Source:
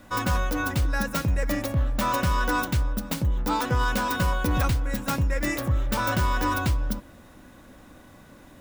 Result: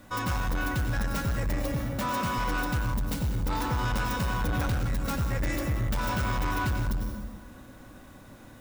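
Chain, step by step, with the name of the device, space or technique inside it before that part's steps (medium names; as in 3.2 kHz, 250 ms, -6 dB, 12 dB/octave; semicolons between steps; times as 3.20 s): 1.76–2.38 s: high-pass 130 Hz 12 dB/octave; plate-style reverb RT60 1.4 s, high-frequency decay 0.65×, pre-delay 80 ms, DRR 2.5 dB; open-reel tape (saturation -22 dBFS, distortion -11 dB; peaking EQ 120 Hz +3 dB 1.12 oct; white noise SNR 39 dB); trim -2.5 dB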